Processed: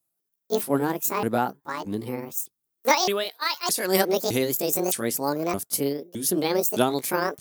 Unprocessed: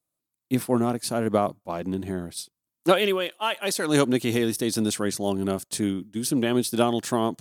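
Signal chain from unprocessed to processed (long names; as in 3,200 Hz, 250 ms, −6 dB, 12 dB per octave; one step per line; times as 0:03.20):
pitch shifter swept by a sawtooth +10.5 semitones, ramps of 615 ms
high-shelf EQ 8,100 Hz +9.5 dB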